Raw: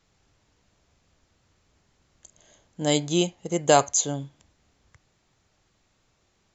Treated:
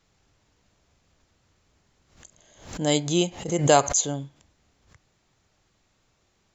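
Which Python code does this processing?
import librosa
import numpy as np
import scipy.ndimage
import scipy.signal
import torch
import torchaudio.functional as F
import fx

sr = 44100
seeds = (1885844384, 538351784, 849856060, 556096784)

y = fx.pre_swell(x, sr, db_per_s=110.0)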